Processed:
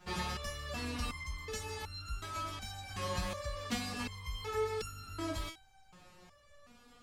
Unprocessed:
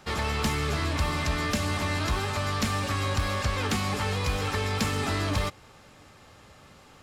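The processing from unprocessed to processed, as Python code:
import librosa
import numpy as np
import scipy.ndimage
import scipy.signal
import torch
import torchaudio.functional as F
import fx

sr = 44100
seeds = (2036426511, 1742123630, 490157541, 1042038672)

y = fx.low_shelf(x, sr, hz=110.0, db=9.0)
y = fx.resonator_held(y, sr, hz=2.7, low_hz=180.0, high_hz=1400.0)
y = y * 10.0 ** (5.5 / 20.0)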